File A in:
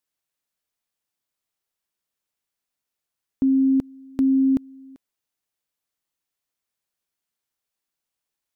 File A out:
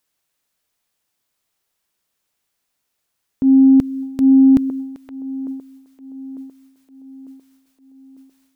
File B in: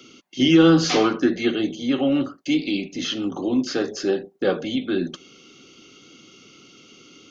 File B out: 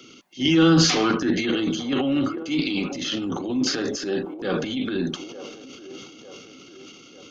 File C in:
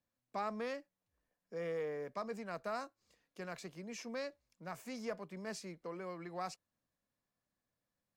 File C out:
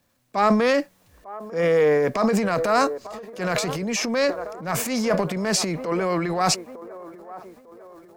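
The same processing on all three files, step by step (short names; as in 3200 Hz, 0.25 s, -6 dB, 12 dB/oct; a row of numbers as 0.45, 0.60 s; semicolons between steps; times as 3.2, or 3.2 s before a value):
band-limited delay 0.899 s, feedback 49%, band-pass 620 Hz, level -16 dB; dynamic EQ 540 Hz, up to -5 dB, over -34 dBFS, Q 0.93; transient shaper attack -8 dB, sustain +9 dB; normalise peaks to -6 dBFS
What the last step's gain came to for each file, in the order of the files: +10.5, +0.5, +21.0 dB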